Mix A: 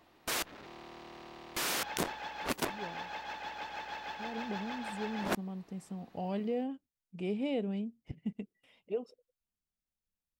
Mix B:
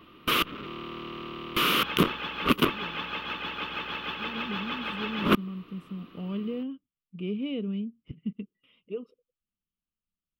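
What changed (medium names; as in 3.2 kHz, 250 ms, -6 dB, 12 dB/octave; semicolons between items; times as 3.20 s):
background +11.0 dB; master: add FFT filter 100 Hz 0 dB, 180 Hz +5 dB, 450 Hz 0 dB, 800 Hz -17 dB, 1.2 kHz +7 dB, 1.7 kHz -8 dB, 3 kHz +6 dB, 4.4 kHz -10 dB, 7.7 kHz -20 dB, 12 kHz -6 dB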